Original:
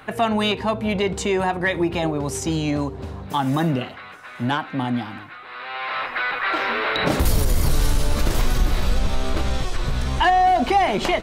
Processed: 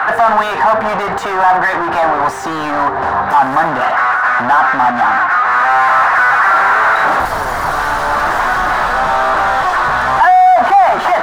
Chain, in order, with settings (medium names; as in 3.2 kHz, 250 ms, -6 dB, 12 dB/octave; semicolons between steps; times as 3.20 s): overdrive pedal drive 38 dB, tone 1.9 kHz, clips at -7 dBFS; high-order bell 1.1 kHz +15 dB; trim -8.5 dB